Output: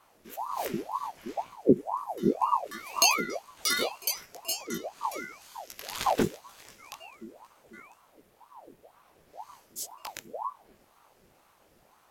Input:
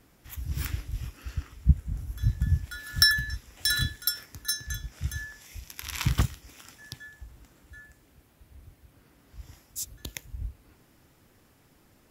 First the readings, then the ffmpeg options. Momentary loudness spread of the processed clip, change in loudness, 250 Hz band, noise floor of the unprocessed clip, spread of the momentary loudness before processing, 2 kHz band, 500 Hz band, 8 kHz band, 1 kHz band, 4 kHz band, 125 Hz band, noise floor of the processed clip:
20 LU, −1.0 dB, +8.0 dB, −62 dBFS, 18 LU, −5.0 dB, +21.5 dB, +3.5 dB, +16.0 dB, −3.5 dB, −14.5 dB, −64 dBFS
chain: -af "flanger=delay=15.5:depth=4.9:speed=2.8,aeval=exprs='val(0)*sin(2*PI*680*n/s+680*0.6/2*sin(2*PI*2*n/s))':channel_layout=same,volume=4dB"

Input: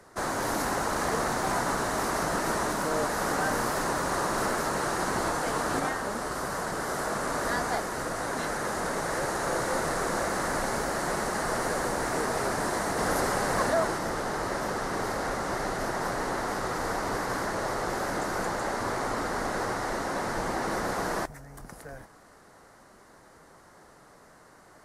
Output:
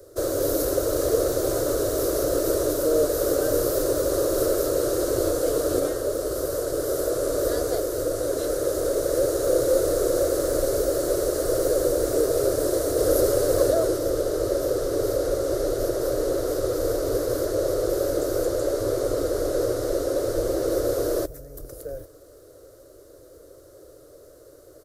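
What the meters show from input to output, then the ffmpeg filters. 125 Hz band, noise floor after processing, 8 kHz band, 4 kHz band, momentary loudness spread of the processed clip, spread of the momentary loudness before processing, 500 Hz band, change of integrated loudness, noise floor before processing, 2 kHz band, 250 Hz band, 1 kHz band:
+3.5 dB, −49 dBFS, +4.0 dB, +1.0 dB, 4 LU, 4 LU, +10.5 dB, +5.5 dB, −55 dBFS, −9.5 dB, +5.0 dB, −8.5 dB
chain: -af "firequalizer=gain_entry='entry(110,0);entry(200,-27);entry(300,0);entry(550,6);entry(830,-26);entry(1300,-13);entry(1900,-22);entry(3700,-7);entry(9800,-3);entry(14000,9)':delay=0.05:min_phase=1,volume=8dB"

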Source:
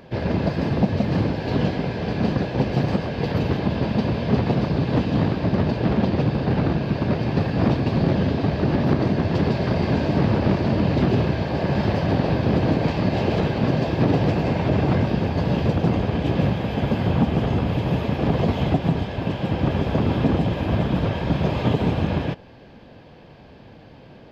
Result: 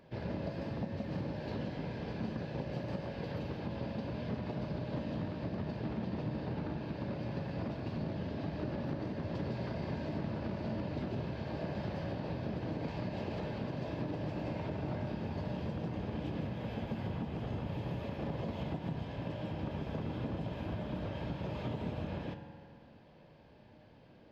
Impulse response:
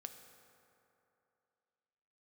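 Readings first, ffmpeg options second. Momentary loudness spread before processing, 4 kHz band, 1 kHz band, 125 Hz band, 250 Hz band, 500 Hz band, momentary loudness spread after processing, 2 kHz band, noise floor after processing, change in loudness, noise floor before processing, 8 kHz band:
3 LU, −17.5 dB, −17.0 dB, −17.5 dB, −17.0 dB, −16.5 dB, 2 LU, −17.0 dB, −58 dBFS, −17.0 dB, −45 dBFS, can't be measured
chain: -filter_complex "[0:a]acompressor=threshold=-20dB:ratio=6[link_01];[1:a]atrim=start_sample=2205,asetrate=52920,aresample=44100[link_02];[link_01][link_02]afir=irnorm=-1:irlink=0,volume=-7.5dB"

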